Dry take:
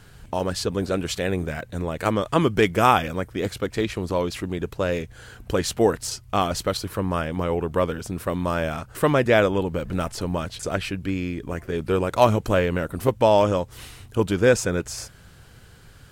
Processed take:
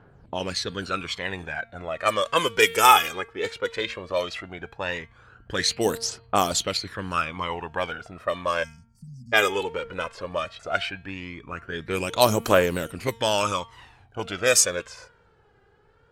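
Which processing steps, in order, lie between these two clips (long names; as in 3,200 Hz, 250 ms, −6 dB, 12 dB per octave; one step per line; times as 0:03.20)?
time-frequency box erased 0:08.63–0:09.33, 250–4,400 Hz
hum removal 229.4 Hz, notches 20
phase shifter 0.16 Hz, delay 2.5 ms, feedback 64%
low-pass that shuts in the quiet parts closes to 700 Hz, open at −13 dBFS
spectral tilt +4 dB per octave
level −1.5 dB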